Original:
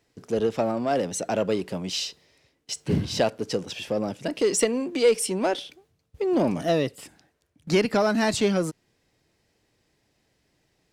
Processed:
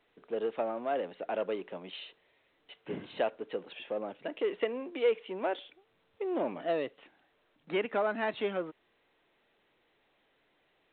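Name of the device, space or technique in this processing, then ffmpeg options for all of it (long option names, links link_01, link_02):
telephone: -af "highpass=380,lowpass=3000,volume=-6.5dB" -ar 8000 -c:a pcm_alaw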